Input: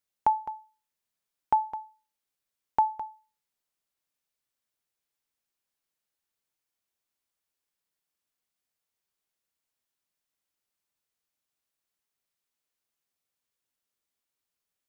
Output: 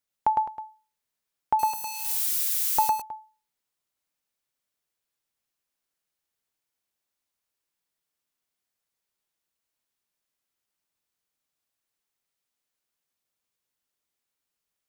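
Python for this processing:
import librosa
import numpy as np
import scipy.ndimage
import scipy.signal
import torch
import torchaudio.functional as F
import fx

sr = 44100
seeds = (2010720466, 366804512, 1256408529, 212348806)

y = fx.crossing_spikes(x, sr, level_db=-23.5, at=(1.59, 2.91))
y = y + 10.0 ** (-3.0 / 20.0) * np.pad(y, (int(107 * sr / 1000.0), 0))[:len(y)]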